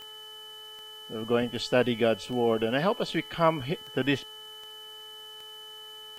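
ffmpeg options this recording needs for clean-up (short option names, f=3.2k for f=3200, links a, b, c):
-af "adeclick=t=4,bandreject=f=431.7:t=h:w=4,bandreject=f=863.4:t=h:w=4,bandreject=f=1.2951k:t=h:w=4,bandreject=f=1.7268k:t=h:w=4,bandreject=f=3k:w=30,agate=range=-21dB:threshold=-37dB"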